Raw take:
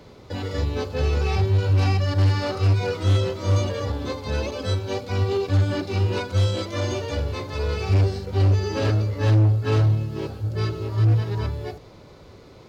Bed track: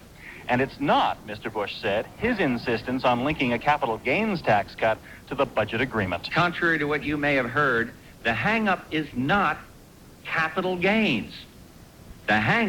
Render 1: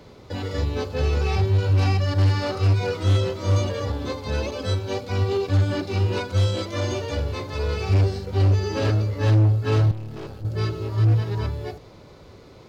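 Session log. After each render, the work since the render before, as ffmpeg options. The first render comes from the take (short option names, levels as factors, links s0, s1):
-filter_complex "[0:a]asettb=1/sr,asplit=3[s0][s1][s2];[s0]atrim=end=9.914[s3];[s1]atrim=start=9.91:end=10.45,asetpts=PTS-STARTPTS,afade=t=in:d=0.004:c=qsin,afade=t=out:st=0.536:d=0.004:c=qsin,aeval=exprs='(tanh(35.5*val(0)+0.55)-tanh(0.55))/35.5':c=same[s4];[s2]atrim=start=10.446[s5];[s3][s4]acrossfade=d=0.004:c1=hsin:c2=qsin[s6];[s6][s5]acrossfade=d=0.004:c1=qsin:c2=hsin"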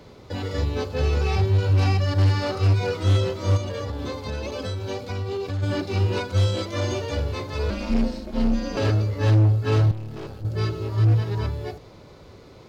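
-filter_complex "[0:a]asplit=3[s0][s1][s2];[s0]afade=t=out:st=3.56:d=0.02[s3];[s1]acompressor=threshold=0.0562:ratio=6:attack=3.2:release=140:knee=1:detection=peak,afade=t=in:st=3.56:d=0.02,afade=t=out:st=5.62:d=0.02[s4];[s2]afade=t=in:st=5.62:d=0.02[s5];[s3][s4][s5]amix=inputs=3:normalize=0,asettb=1/sr,asplit=3[s6][s7][s8];[s6]atrim=end=7.704[s9];[s7]atrim=start=7.7:end=8.77,asetpts=PTS-STARTPTS,afade=t=in:d=0.004:c=qsin,afade=t=out:st=1.066:d=0.004:c=qsin,aeval=exprs='val(0)*sin(2*PI*130*n/s)':c=same[s10];[s8]atrim=start=8.766[s11];[s9][s10]acrossfade=d=0.004:c1=hsin:c2=qsin[s12];[s12][s11]acrossfade=d=0.004:c1=qsin:c2=hsin"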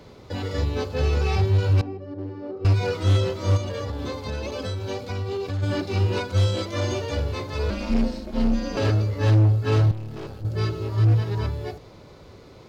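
-filter_complex "[0:a]asettb=1/sr,asplit=3[s0][s1][s2];[s0]atrim=end=1.814[s3];[s1]atrim=start=1.81:end=2.65,asetpts=PTS-STARTPTS,afade=t=in:d=0.004:c=qsin,afade=t=out:st=0.836:d=0.004:c=qsin,bandpass=f=350:t=q:w=2.7[s4];[s2]atrim=start=2.646[s5];[s3][s4]acrossfade=d=0.004:c1=hsin:c2=qsin[s6];[s6][s5]acrossfade=d=0.004:c1=qsin:c2=hsin"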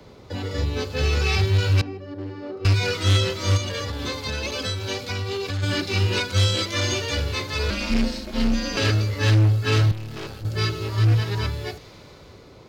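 -filter_complex "[0:a]acrossover=split=250|580|1400[s0][s1][s2][s3];[s2]alimiter=level_in=3.55:limit=0.0631:level=0:latency=1:release=335,volume=0.282[s4];[s3]dynaudnorm=f=260:g=7:m=3.16[s5];[s0][s1][s4][s5]amix=inputs=4:normalize=0"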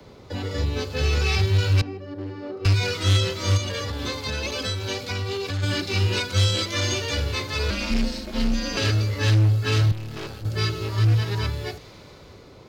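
-filter_complex "[0:a]acrossover=split=130|3000[s0][s1][s2];[s1]acompressor=threshold=0.0501:ratio=2[s3];[s0][s3][s2]amix=inputs=3:normalize=0"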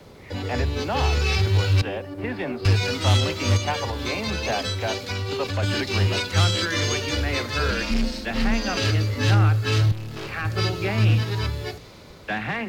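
-filter_complex "[1:a]volume=0.473[s0];[0:a][s0]amix=inputs=2:normalize=0"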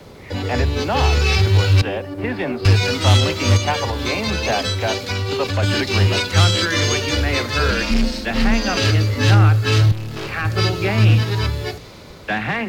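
-af "volume=1.88"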